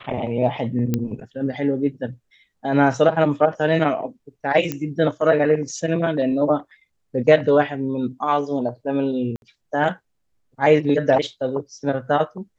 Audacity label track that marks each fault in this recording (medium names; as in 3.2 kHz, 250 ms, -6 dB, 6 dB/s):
0.940000	0.940000	pop -8 dBFS
4.720000	4.720000	pop -10 dBFS
9.360000	9.420000	dropout 61 ms